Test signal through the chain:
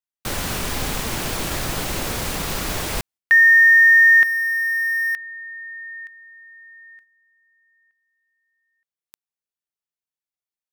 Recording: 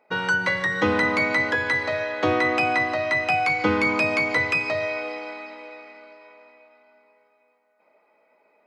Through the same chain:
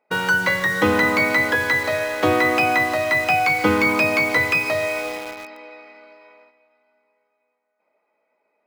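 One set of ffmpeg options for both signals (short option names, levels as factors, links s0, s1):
-filter_complex "[0:a]agate=range=0.398:threshold=0.00316:ratio=16:detection=peak,asplit=2[s0][s1];[s1]acrusher=bits=4:mix=0:aa=0.000001,volume=0.501[s2];[s0][s2]amix=inputs=2:normalize=0"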